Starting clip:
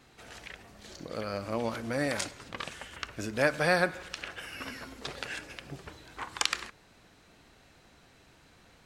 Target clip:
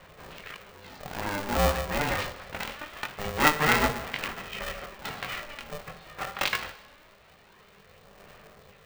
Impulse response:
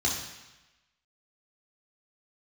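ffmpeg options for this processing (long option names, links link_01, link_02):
-filter_complex "[0:a]aphaser=in_gain=1:out_gain=1:delay=4.6:decay=0.55:speed=0.24:type=sinusoidal,highpass=frequency=120:width=0.5412,highpass=frequency=120:width=1.3066,equalizer=frequency=180:width_type=q:width=4:gain=-5,equalizer=frequency=560:width_type=q:width=4:gain=-3,equalizer=frequency=1900:width_type=q:width=4:gain=-6,equalizer=frequency=3200:width_type=q:width=4:gain=-8,lowpass=frequency=3600:width=0.5412,lowpass=frequency=3600:width=1.3066,flanger=delay=19:depth=2.1:speed=1.5,asplit=2[link_01][link_02];[1:a]atrim=start_sample=2205[link_03];[link_02][link_03]afir=irnorm=-1:irlink=0,volume=-18.5dB[link_04];[link_01][link_04]amix=inputs=2:normalize=0,aeval=exprs='val(0)*sgn(sin(2*PI*300*n/s))':channel_layout=same,volume=8.5dB"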